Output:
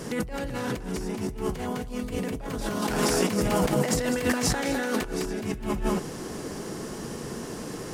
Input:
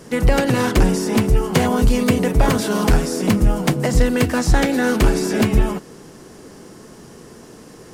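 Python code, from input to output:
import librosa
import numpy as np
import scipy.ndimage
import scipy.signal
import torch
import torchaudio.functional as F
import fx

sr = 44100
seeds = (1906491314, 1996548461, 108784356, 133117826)

y = fx.highpass(x, sr, hz=340.0, slope=6, at=(2.81, 5.05))
y = y + 10.0 ** (-6.5 / 20.0) * np.pad(y, (int(205 * sr / 1000.0), 0))[:len(y)]
y = fx.over_compress(y, sr, threshold_db=-26.0, ratio=-1.0)
y = F.gain(torch.from_numpy(y), -3.0).numpy()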